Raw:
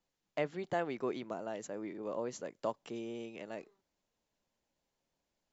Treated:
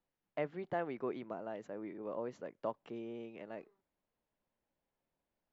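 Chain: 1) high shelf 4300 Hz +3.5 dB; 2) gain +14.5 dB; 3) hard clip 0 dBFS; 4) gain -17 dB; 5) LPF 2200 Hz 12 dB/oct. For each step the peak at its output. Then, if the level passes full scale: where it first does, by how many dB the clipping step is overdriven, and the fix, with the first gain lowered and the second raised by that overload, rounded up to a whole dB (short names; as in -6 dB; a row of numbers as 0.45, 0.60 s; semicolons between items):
-20.0, -5.5, -5.5, -22.5, -24.0 dBFS; no overload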